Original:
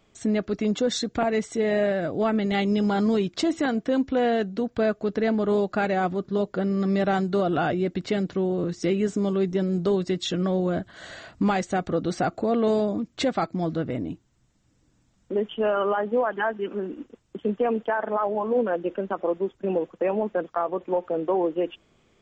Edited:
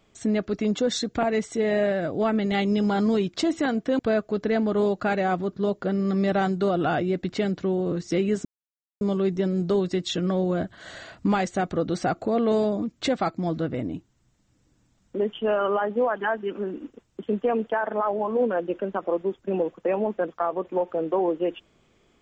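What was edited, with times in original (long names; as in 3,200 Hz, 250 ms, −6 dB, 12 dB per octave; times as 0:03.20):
0:03.99–0:04.71: remove
0:09.17: splice in silence 0.56 s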